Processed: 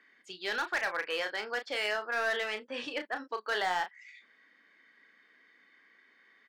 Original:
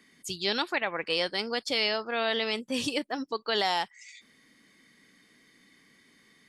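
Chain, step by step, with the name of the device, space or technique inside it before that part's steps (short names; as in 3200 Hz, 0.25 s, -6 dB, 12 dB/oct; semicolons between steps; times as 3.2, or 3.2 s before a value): megaphone (BPF 480–2600 Hz; bell 1600 Hz +8 dB 0.48 oct; hard clip -23 dBFS, distortion -14 dB; doubler 33 ms -8 dB); gain -2.5 dB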